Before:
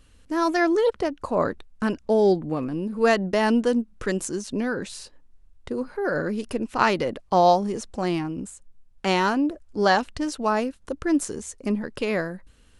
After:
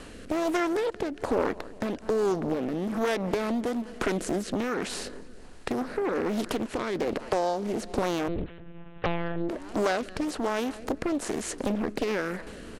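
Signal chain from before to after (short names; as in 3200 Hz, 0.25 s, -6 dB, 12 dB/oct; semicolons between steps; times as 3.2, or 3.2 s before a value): per-bin compression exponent 0.6; on a send: feedback echo 0.201 s, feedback 56%, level -23 dB; on the sum: compressor 4:1, threshold -23 dBFS, peak gain reduction 10 dB; rotary speaker horn 1.2 Hz; 8.28–9.49 monotone LPC vocoder at 8 kHz 170 Hz; Doppler distortion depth 0.79 ms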